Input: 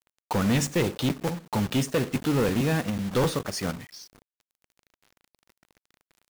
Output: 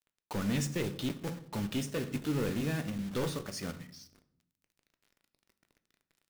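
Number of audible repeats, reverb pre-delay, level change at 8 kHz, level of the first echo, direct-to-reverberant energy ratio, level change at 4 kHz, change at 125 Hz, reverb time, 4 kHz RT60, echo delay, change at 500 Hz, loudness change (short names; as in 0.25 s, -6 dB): none, 3 ms, -8.5 dB, none, 10.0 dB, -8.5 dB, -8.0 dB, 0.70 s, 0.50 s, none, -10.0 dB, -8.5 dB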